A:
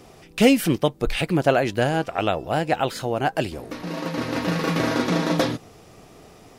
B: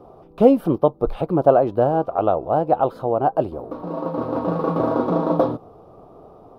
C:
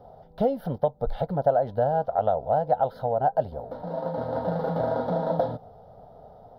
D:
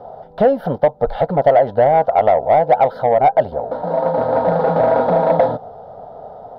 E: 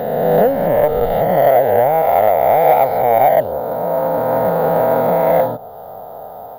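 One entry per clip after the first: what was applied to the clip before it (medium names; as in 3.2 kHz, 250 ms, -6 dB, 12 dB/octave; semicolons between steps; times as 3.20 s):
FFT filter 210 Hz 0 dB, 560 Hz +7 dB, 1.2 kHz +4 dB, 1.9 kHz -22 dB, 3.7 kHz -16 dB, 7.2 kHz -29 dB, 12 kHz -17 dB; trim -1 dB
compression 2.5:1, threshold -18 dBFS, peak gain reduction 8 dB; static phaser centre 1.7 kHz, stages 8
overdrive pedal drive 16 dB, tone 1.2 kHz, clips at -8.5 dBFS; trim +7.5 dB
reverse spectral sustain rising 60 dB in 1.91 s; careless resampling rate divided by 3×, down filtered, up hold; tape noise reduction on one side only encoder only; trim -3 dB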